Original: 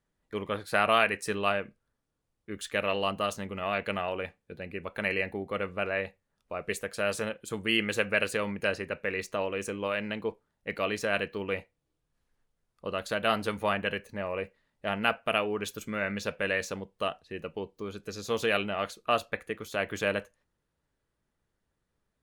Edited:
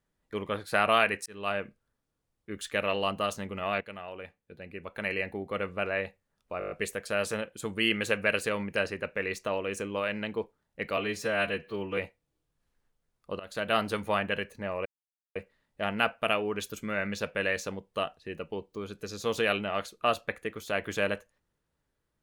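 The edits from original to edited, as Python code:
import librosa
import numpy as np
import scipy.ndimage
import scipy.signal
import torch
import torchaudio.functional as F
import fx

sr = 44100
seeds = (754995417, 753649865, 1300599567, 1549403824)

y = fx.edit(x, sr, fx.fade_in_span(start_s=1.26, length_s=0.36),
    fx.fade_in_from(start_s=3.81, length_s=1.83, floor_db=-12.5),
    fx.stutter(start_s=6.59, slice_s=0.02, count=7),
    fx.stretch_span(start_s=10.85, length_s=0.67, factor=1.5),
    fx.fade_in_from(start_s=12.94, length_s=0.37, curve='qsin', floor_db=-18.5),
    fx.insert_silence(at_s=14.4, length_s=0.5), tone=tone)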